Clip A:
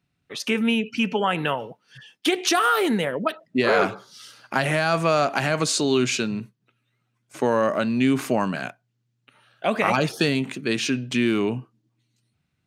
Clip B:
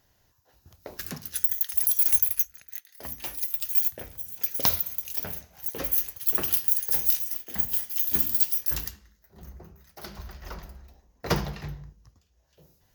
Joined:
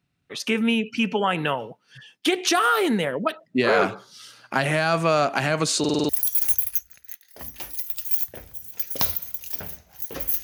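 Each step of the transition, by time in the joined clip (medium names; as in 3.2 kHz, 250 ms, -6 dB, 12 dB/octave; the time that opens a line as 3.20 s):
clip A
5.79 s: stutter in place 0.05 s, 6 plays
6.09 s: go over to clip B from 1.73 s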